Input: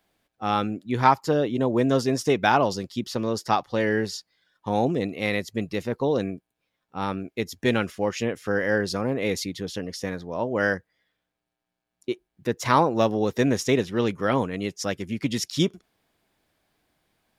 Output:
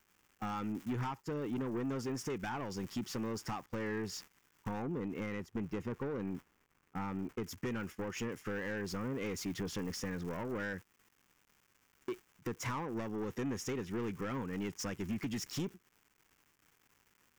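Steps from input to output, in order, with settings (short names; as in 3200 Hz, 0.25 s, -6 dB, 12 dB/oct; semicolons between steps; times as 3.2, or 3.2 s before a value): crackle 370/s -37 dBFS; compressor 12:1, threshold -31 dBFS, peak gain reduction 19.5 dB; 4.82–7.44 high shelf 2600 Hz -10.5 dB; soft clip -35 dBFS, distortion -9 dB; gate -48 dBFS, range -15 dB; fifteen-band EQ 630 Hz -10 dB, 4000 Hz -12 dB, 10000 Hz -7 dB; gain +4 dB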